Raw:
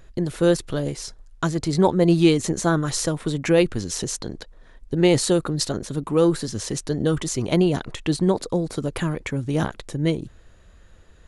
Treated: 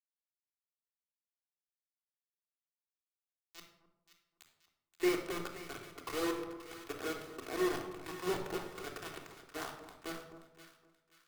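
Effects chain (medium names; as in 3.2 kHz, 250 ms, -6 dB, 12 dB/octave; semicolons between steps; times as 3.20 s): reverse spectral sustain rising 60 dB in 0.34 s; peaking EQ 1.9 kHz +8.5 dB 2.5 oct; auto-wah 390–2200 Hz, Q 3.7, down, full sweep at -19.5 dBFS; in parallel at 0 dB: level held to a coarse grid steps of 17 dB; on the sum: band-pass sweep 7.4 kHz -> 1.4 kHz, 2.17–5.83 s; word length cut 6-bit, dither none; on a send: two-band feedback delay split 1.2 kHz, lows 259 ms, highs 529 ms, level -9 dB; on the sum: simulated room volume 3100 m³, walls furnished, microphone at 3.4 m; three bands expanded up and down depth 40%; trim -3.5 dB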